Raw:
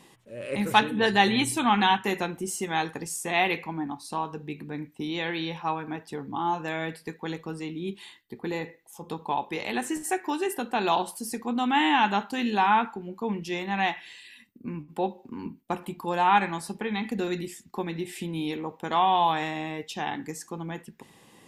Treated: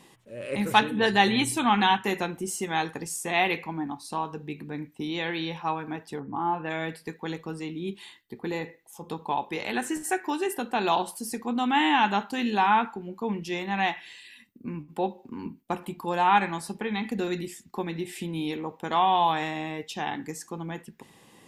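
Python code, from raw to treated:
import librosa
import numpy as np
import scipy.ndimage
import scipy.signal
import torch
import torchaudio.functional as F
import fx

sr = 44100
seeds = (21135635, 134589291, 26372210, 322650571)

y = fx.lowpass(x, sr, hz=fx.line((6.19, 1600.0), (6.69, 3200.0)), slope=24, at=(6.19, 6.69), fade=0.02)
y = fx.peak_eq(y, sr, hz=1500.0, db=6.5, octaves=0.21, at=(9.61, 10.25))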